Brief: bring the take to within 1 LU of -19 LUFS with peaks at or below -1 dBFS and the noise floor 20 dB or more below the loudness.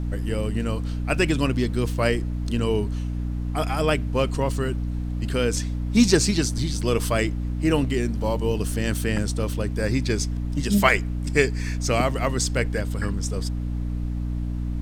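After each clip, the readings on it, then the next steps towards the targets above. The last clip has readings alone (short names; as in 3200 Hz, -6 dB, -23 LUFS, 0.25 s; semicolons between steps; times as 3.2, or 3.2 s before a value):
hum 60 Hz; harmonics up to 300 Hz; hum level -24 dBFS; noise floor -28 dBFS; noise floor target -45 dBFS; loudness -24.5 LUFS; peak -2.0 dBFS; loudness target -19.0 LUFS
-> notches 60/120/180/240/300 Hz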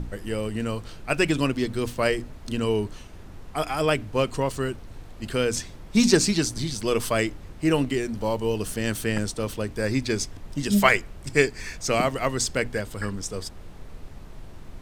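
hum none; noise floor -43 dBFS; noise floor target -46 dBFS
-> noise print and reduce 6 dB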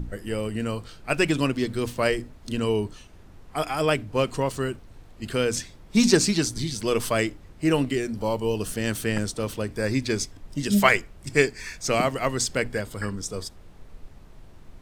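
noise floor -48 dBFS; loudness -25.5 LUFS; peak -2.5 dBFS; loudness target -19.0 LUFS
-> gain +6.5 dB; limiter -1 dBFS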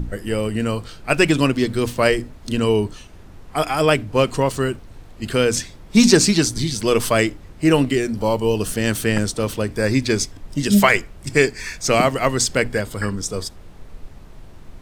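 loudness -19.5 LUFS; peak -1.0 dBFS; noise floor -42 dBFS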